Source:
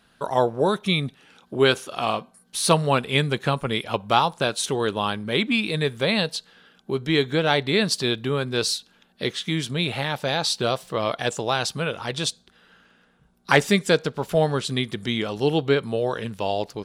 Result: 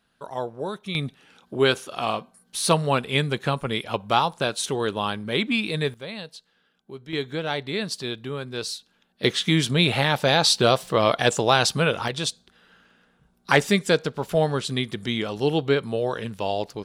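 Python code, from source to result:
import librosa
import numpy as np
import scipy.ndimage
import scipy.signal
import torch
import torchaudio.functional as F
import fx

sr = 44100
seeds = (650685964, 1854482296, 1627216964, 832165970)

y = fx.gain(x, sr, db=fx.steps((0.0, -9.5), (0.95, -1.5), (5.94, -13.5), (7.13, -7.0), (9.24, 5.0), (12.08, -1.0)))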